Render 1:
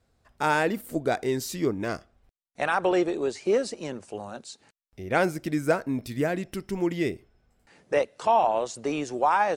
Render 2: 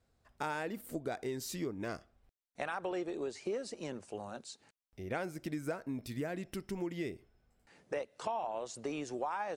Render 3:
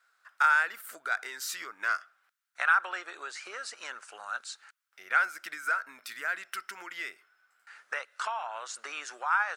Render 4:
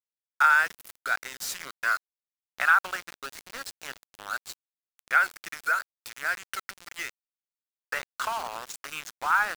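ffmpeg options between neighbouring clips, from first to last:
-af "acompressor=threshold=-29dB:ratio=4,volume=-6dB"
-af "highpass=f=1.4k:t=q:w=5.5,volume=6.5dB"
-af "aeval=exprs='val(0)*gte(abs(val(0)),0.0158)':c=same,volume=3.5dB"

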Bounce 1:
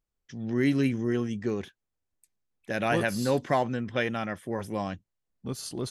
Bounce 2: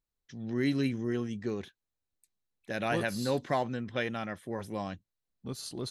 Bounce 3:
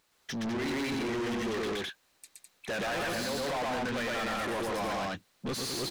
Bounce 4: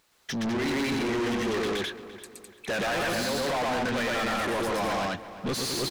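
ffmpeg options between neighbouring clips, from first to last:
-af "equalizer=f=4k:w=6.6:g=8,volume=-4.5dB"
-filter_complex "[0:a]alimiter=level_in=3dB:limit=-24dB:level=0:latency=1:release=151,volume=-3dB,aecho=1:1:119.5|207:0.891|0.562,asplit=2[a][b];[b]highpass=f=720:p=1,volume=37dB,asoftclip=type=tanh:threshold=-20.5dB[c];[a][c]amix=inputs=2:normalize=0,lowpass=f=4.5k:p=1,volume=-6dB,volume=-5.5dB"
-filter_complex "[0:a]asplit=2[a][b];[b]adelay=342,lowpass=f=3.4k:p=1,volume=-14.5dB,asplit=2[c][d];[d]adelay=342,lowpass=f=3.4k:p=1,volume=0.43,asplit=2[e][f];[f]adelay=342,lowpass=f=3.4k:p=1,volume=0.43,asplit=2[g][h];[h]adelay=342,lowpass=f=3.4k:p=1,volume=0.43[i];[a][c][e][g][i]amix=inputs=5:normalize=0,volume=4.5dB"

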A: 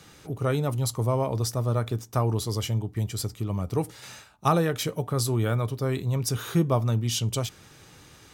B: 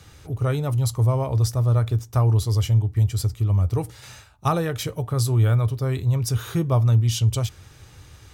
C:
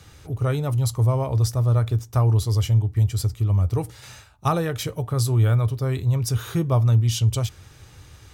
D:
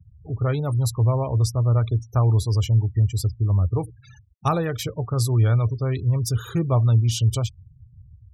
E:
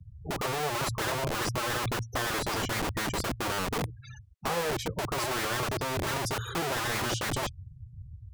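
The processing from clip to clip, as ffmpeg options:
-af "lowshelf=f=130:t=q:w=1.5:g=10.5"
-af anull
-af "afftfilt=real='re*gte(hypot(re,im),0.0178)':imag='im*gte(hypot(re,im),0.0178)':win_size=1024:overlap=0.75"
-filter_complex "[0:a]lowpass=10k,acrossover=split=220[a][b];[a]aeval=exprs='(mod(26.6*val(0)+1,2)-1)/26.6':c=same[c];[b]acompressor=threshold=-37dB:ratio=5[d];[c][d]amix=inputs=2:normalize=0,volume=2dB"

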